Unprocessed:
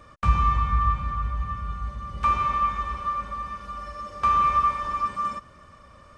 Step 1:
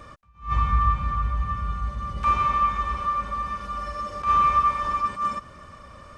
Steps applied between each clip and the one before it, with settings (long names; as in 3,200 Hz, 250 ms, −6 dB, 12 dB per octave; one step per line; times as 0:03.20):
in parallel at −1.5 dB: downward compressor, threshold −32 dBFS, peak gain reduction 17 dB
on the sum: level that may rise only so fast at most 200 dB per second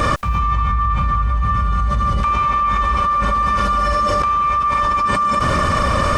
envelope flattener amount 100%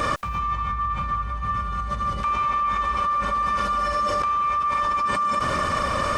low-shelf EQ 190 Hz −8.5 dB
level −5.5 dB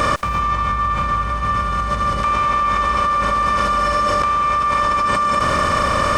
compressor on every frequency bin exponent 0.6
level +4 dB